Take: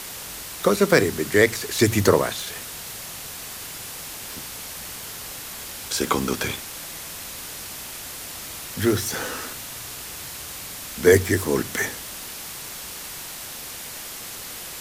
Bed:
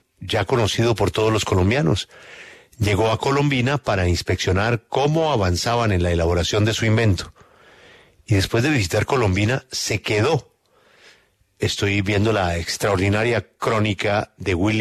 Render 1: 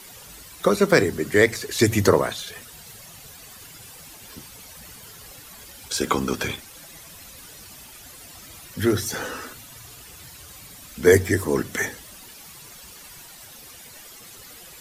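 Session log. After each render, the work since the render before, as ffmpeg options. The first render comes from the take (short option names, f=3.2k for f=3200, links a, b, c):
-af "afftdn=nr=12:nf=-36"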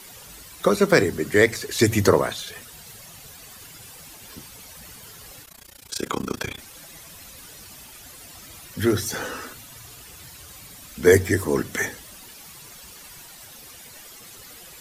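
-filter_complex "[0:a]asplit=3[a][b][c];[a]afade=t=out:st=5.43:d=0.02[d];[b]tremolo=f=29:d=0.947,afade=t=in:st=5.43:d=0.02,afade=t=out:st=6.57:d=0.02[e];[c]afade=t=in:st=6.57:d=0.02[f];[d][e][f]amix=inputs=3:normalize=0"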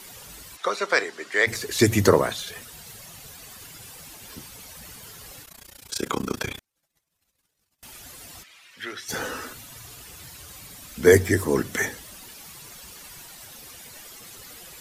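-filter_complex "[0:a]asplit=3[a][b][c];[a]afade=t=out:st=0.56:d=0.02[d];[b]highpass=750,lowpass=5.7k,afade=t=in:st=0.56:d=0.02,afade=t=out:st=1.46:d=0.02[e];[c]afade=t=in:st=1.46:d=0.02[f];[d][e][f]amix=inputs=3:normalize=0,asettb=1/sr,asplit=3[g][h][i];[g]atrim=end=6.594[j];[h]atrim=start=6.59:end=7.83,asetpts=PTS-STARTPTS,afade=t=in:d=0.004:c=qsin,afade=t=out:st=1.236:d=0.004:c=qsin,agate=range=-40dB:threshold=-40dB:ratio=16:release=100:detection=peak[k];[i]atrim=start=7.826[l];[j][k]acrossfade=d=0.004:c1=hsin:c2=qsin[m];[m][l]acrossfade=d=0.004:c1=qsin:c2=hsin,asplit=3[n][o][p];[n]afade=t=out:st=8.42:d=0.02[q];[o]bandpass=f=2.4k:t=q:w=1.4,afade=t=in:st=8.42:d=0.02,afade=t=out:st=9.08:d=0.02[r];[p]afade=t=in:st=9.08:d=0.02[s];[q][r][s]amix=inputs=3:normalize=0"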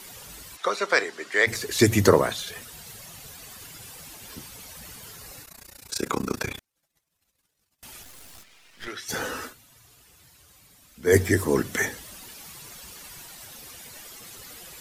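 -filter_complex "[0:a]asettb=1/sr,asplit=3[a][b][c];[a]atrim=end=5.164[d];[b]atrim=start=5.16:end=6.54,asetpts=PTS-STARTPTS,afade=t=in:d=0.004:c=qsin,afade=t=out:st=1.376:d=0.004:c=qsin,bandreject=f=3.2k:w=6.1[e];[c]atrim=start=6.536[f];[d][e]acrossfade=d=0.004:c1=hsin:c2=qsin[g];[g][f]acrossfade=d=0.004:c1=qsin:c2=hsin,asettb=1/sr,asplit=3[h][i][j];[h]atrim=end=8.034[k];[i]atrim=start=8.03:end=8.88,asetpts=PTS-STARTPTS,afade=t=in:d=0.004:c=qsin,afade=t=out:st=0.846:d=0.004:c=qsin,aeval=exprs='max(val(0),0)':c=same[l];[j]atrim=start=8.876[m];[k][l]acrossfade=d=0.004:c1=hsin:c2=qsin[n];[n][m]acrossfade=d=0.004:c1=qsin:c2=hsin,asplit=3[o][p][q];[o]atrim=end=9.58,asetpts=PTS-STARTPTS,afade=t=out:st=9.45:d=0.13:c=qua:silence=0.251189[r];[p]atrim=start=9.58:end=11.03,asetpts=PTS-STARTPTS,volume=-12dB[s];[q]atrim=start=11.03,asetpts=PTS-STARTPTS,afade=t=in:d=0.13:c=qua:silence=0.251189[t];[r][s][t]concat=n=3:v=0:a=1"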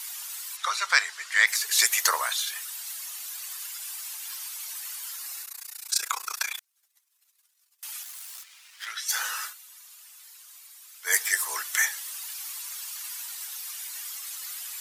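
-af "highpass=f=950:w=0.5412,highpass=f=950:w=1.3066,highshelf=f=4.3k:g=9"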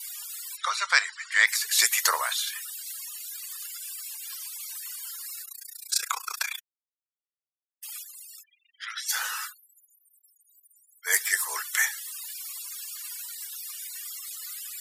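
-af "bandreject=f=6.1k:w=19,afftfilt=real='re*gte(hypot(re,im),0.00891)':imag='im*gte(hypot(re,im),0.00891)':win_size=1024:overlap=0.75"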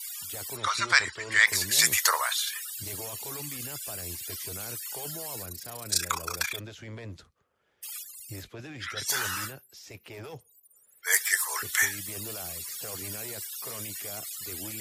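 -filter_complex "[1:a]volume=-24dB[a];[0:a][a]amix=inputs=2:normalize=0"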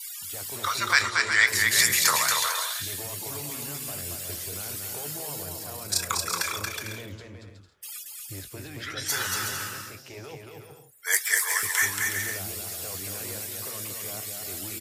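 -filter_complex "[0:a]asplit=2[a][b];[b]adelay=21,volume=-13dB[c];[a][c]amix=inputs=2:normalize=0,asplit=2[d][e];[e]aecho=0:1:230|368|450.8|500.5|530.3:0.631|0.398|0.251|0.158|0.1[f];[d][f]amix=inputs=2:normalize=0"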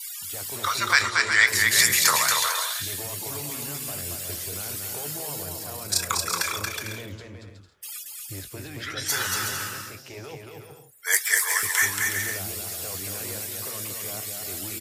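-af "volume=2dB,alimiter=limit=-3dB:level=0:latency=1"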